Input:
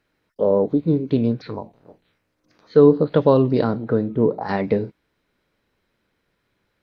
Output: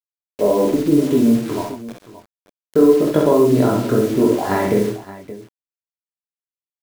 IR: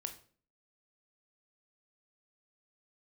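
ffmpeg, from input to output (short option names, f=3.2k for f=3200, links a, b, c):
-af "aemphasis=mode=reproduction:type=75kf,aecho=1:1:3:0.52,acompressor=threshold=-16dB:ratio=5,flanger=delay=19.5:depth=4.9:speed=0.92,acrusher=bits=6:mix=0:aa=0.000001,aecho=1:1:48|64|135|574:0.501|0.531|0.299|0.168,volume=7.5dB"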